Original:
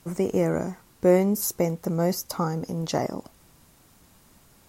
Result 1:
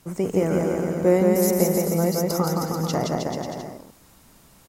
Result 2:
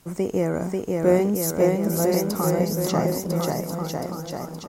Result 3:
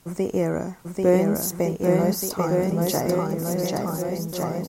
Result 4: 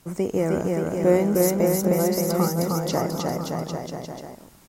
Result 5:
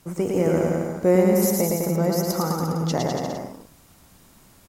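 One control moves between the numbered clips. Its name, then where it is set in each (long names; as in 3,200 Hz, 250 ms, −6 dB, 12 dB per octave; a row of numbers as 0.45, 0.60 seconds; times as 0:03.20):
bouncing-ball delay, first gap: 170, 540, 790, 310, 110 milliseconds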